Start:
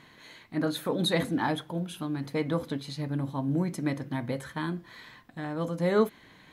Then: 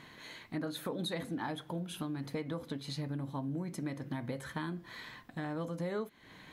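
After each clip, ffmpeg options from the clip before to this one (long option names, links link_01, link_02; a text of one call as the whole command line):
ffmpeg -i in.wav -af "acompressor=threshold=-36dB:ratio=6,volume=1dB" out.wav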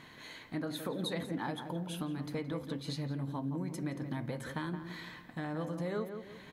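ffmpeg -i in.wav -filter_complex "[0:a]asplit=2[link_01][link_02];[link_02]adelay=171,lowpass=frequency=1400:poles=1,volume=-7dB,asplit=2[link_03][link_04];[link_04]adelay=171,lowpass=frequency=1400:poles=1,volume=0.4,asplit=2[link_05][link_06];[link_06]adelay=171,lowpass=frequency=1400:poles=1,volume=0.4,asplit=2[link_07][link_08];[link_08]adelay=171,lowpass=frequency=1400:poles=1,volume=0.4,asplit=2[link_09][link_10];[link_10]adelay=171,lowpass=frequency=1400:poles=1,volume=0.4[link_11];[link_01][link_03][link_05][link_07][link_09][link_11]amix=inputs=6:normalize=0" out.wav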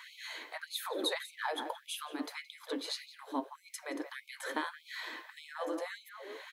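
ffmpeg -i in.wav -af "afftfilt=real='re*gte(b*sr/1024,250*pow(2200/250,0.5+0.5*sin(2*PI*1.7*pts/sr)))':imag='im*gte(b*sr/1024,250*pow(2200/250,0.5+0.5*sin(2*PI*1.7*pts/sr)))':win_size=1024:overlap=0.75,volume=5.5dB" out.wav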